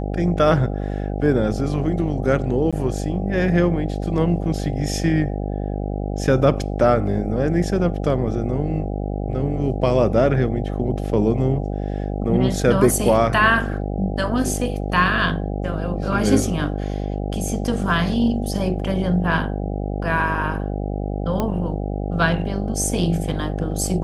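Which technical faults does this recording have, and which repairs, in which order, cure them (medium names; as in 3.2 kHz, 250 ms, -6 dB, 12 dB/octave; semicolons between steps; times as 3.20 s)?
buzz 50 Hz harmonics 16 -25 dBFS
2.71–2.73 s: dropout 16 ms
21.40 s: pop -10 dBFS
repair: de-click; de-hum 50 Hz, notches 16; interpolate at 2.71 s, 16 ms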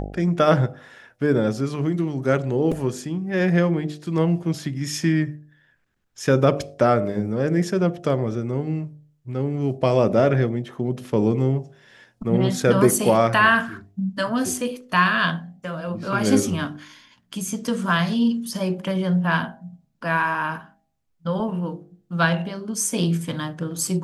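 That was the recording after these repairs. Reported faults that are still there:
nothing left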